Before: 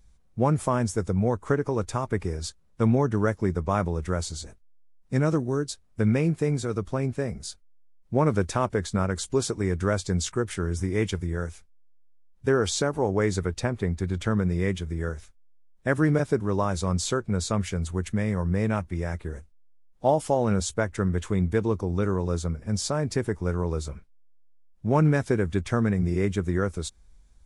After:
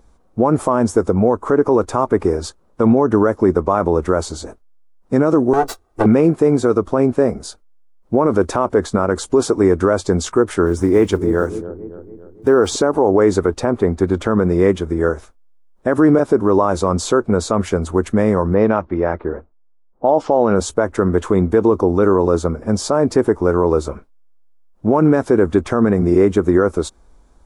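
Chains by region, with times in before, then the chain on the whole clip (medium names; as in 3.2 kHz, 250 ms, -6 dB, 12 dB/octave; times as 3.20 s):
5.53–6.06 s: comb filter that takes the minimum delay 1.5 ms + comb 2.6 ms, depth 52%
10.66–12.76 s: block-companded coder 7-bit + feedback echo behind a low-pass 281 ms, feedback 51%, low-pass 720 Hz, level -12 dB
18.54–20.56 s: low-pass 6 kHz 24 dB/octave + bass shelf 180 Hz -4 dB + level-controlled noise filter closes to 980 Hz, open at -18.5 dBFS
whole clip: high-order bell 570 Hz +13 dB 2.9 oct; peak limiter -8.5 dBFS; trim +4.5 dB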